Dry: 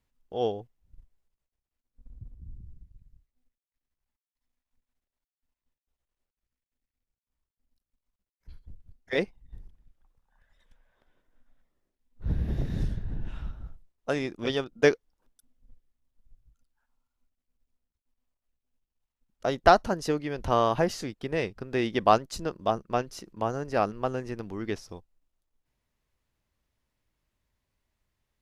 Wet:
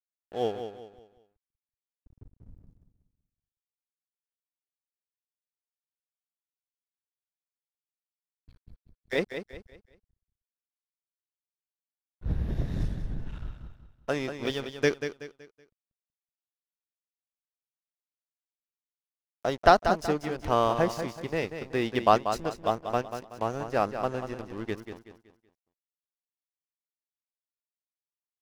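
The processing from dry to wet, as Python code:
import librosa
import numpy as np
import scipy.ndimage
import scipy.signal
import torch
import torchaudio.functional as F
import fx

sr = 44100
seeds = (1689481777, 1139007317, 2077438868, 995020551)

p1 = fx.peak_eq(x, sr, hz=770.0, db=-8.5, octaves=1.6, at=(14.5, 14.91))
p2 = np.sign(p1) * np.maximum(np.abs(p1) - 10.0 ** (-42.5 / 20.0), 0.0)
y = p2 + fx.echo_feedback(p2, sr, ms=188, feedback_pct=35, wet_db=-9, dry=0)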